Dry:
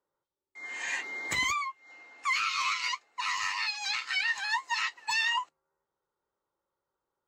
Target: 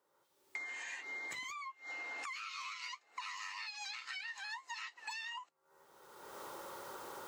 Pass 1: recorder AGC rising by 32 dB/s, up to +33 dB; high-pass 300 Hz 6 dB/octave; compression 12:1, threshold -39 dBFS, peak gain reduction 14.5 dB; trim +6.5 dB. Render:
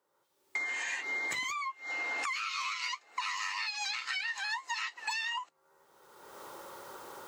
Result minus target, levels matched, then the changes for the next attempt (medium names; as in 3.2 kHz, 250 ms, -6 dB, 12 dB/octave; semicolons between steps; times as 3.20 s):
compression: peak gain reduction -9 dB
change: compression 12:1, threshold -49 dBFS, peak gain reduction 23.5 dB